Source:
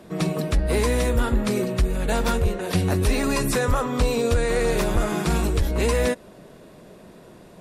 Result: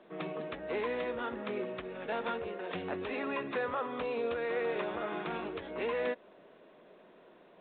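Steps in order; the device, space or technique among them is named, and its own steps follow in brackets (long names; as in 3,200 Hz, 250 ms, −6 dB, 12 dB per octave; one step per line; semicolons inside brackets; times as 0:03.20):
telephone (band-pass filter 350–3,500 Hz; level −9 dB; A-law companding 64 kbit/s 8,000 Hz)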